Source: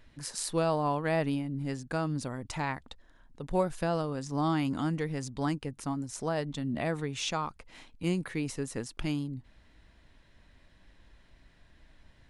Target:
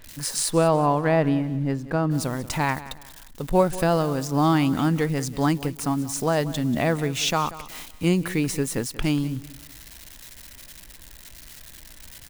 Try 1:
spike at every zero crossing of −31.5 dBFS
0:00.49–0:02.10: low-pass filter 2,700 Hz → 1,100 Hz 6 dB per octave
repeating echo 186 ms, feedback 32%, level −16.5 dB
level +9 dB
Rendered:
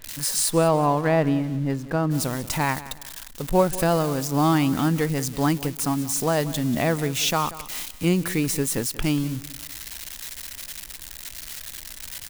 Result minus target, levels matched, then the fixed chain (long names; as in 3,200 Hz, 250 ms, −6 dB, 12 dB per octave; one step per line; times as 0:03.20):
spike at every zero crossing: distortion +8 dB
spike at every zero crossing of −40 dBFS
0:00.49–0:02.10: low-pass filter 2,700 Hz → 1,100 Hz 6 dB per octave
repeating echo 186 ms, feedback 32%, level −16.5 dB
level +9 dB